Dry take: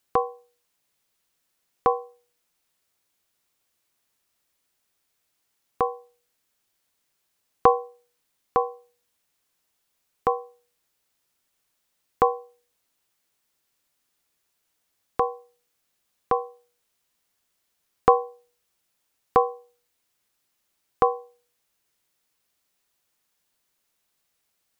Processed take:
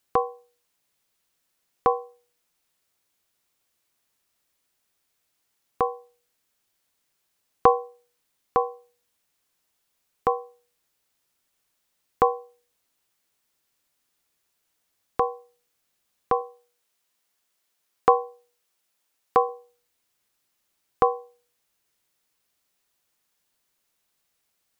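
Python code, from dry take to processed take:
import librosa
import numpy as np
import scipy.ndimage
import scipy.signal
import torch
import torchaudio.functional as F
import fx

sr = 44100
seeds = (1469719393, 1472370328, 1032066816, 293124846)

y = fx.low_shelf(x, sr, hz=170.0, db=-11.5, at=(16.41, 19.49))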